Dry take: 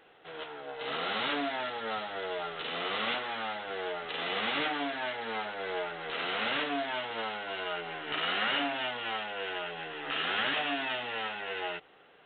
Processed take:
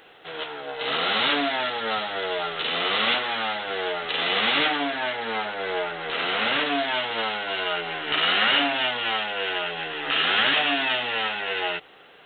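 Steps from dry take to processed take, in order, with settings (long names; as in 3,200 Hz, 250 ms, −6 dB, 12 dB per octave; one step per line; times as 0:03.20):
high-shelf EQ 3,200 Hz +9 dB, from 0:04.76 +3 dB, from 0:06.66 +9 dB
level +7 dB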